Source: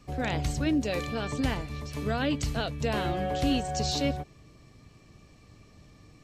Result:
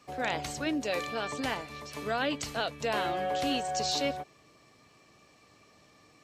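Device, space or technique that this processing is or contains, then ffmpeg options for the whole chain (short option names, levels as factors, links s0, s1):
filter by subtraction: -filter_complex "[0:a]asplit=2[s0][s1];[s1]lowpass=820,volume=-1[s2];[s0][s2]amix=inputs=2:normalize=0"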